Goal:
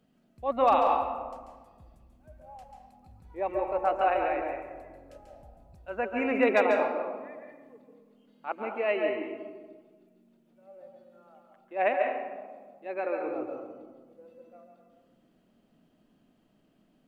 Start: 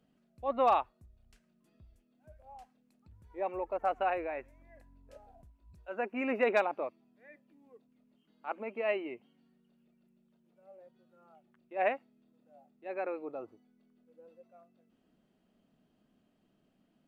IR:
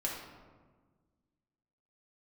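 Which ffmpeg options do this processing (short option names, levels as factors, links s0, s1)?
-filter_complex "[0:a]asplit=2[s0][s1];[1:a]atrim=start_sample=2205,adelay=139[s2];[s1][s2]afir=irnorm=-1:irlink=0,volume=0.531[s3];[s0][s3]amix=inputs=2:normalize=0,volume=1.5"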